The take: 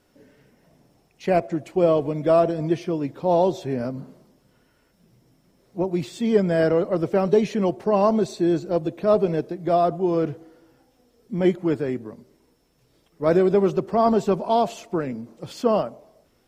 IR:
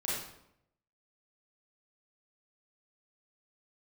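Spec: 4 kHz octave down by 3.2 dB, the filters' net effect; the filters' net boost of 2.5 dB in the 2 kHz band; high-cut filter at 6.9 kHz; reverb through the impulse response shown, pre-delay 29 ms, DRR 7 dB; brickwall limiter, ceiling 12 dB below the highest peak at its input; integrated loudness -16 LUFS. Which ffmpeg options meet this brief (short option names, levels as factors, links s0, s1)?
-filter_complex "[0:a]lowpass=6900,equalizer=f=2000:t=o:g=4.5,equalizer=f=4000:t=o:g=-5.5,alimiter=limit=0.119:level=0:latency=1,asplit=2[s0][s1];[1:a]atrim=start_sample=2205,adelay=29[s2];[s1][s2]afir=irnorm=-1:irlink=0,volume=0.251[s3];[s0][s3]amix=inputs=2:normalize=0,volume=3.76"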